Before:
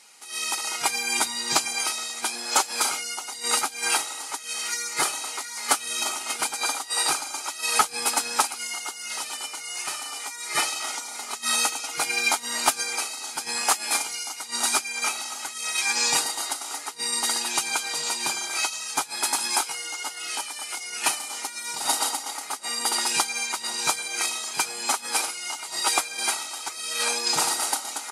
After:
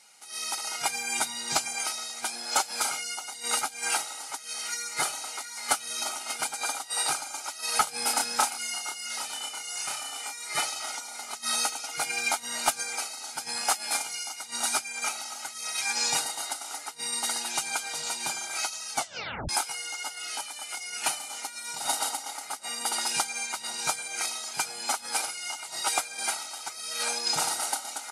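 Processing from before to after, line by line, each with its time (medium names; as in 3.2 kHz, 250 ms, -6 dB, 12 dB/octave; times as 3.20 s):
7.84–10.43 s: doubling 29 ms -2.5 dB
18.95 s: tape stop 0.54 s
whole clip: bass shelf 200 Hz +3 dB; comb 1.4 ms, depth 40%; trim -5 dB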